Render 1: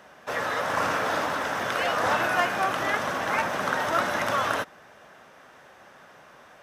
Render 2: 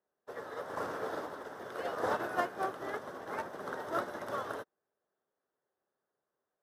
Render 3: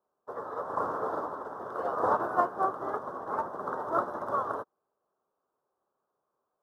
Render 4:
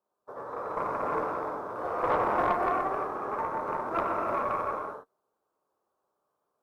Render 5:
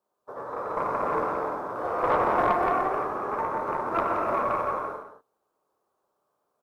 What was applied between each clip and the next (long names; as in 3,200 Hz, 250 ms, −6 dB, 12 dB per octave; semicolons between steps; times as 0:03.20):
graphic EQ with 15 bands 400 Hz +11 dB, 2,500 Hz −11 dB, 6,300 Hz −5 dB; expander for the loud parts 2.5 to 1, over −41 dBFS; level −7 dB
high shelf with overshoot 1,600 Hz −11.5 dB, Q 3; level +3 dB
reverb whose tail is shaped and stops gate 430 ms flat, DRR −5 dB; tube saturation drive 14 dB, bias 0.55; level −1.5 dB
single-tap delay 174 ms −10.5 dB; level +3 dB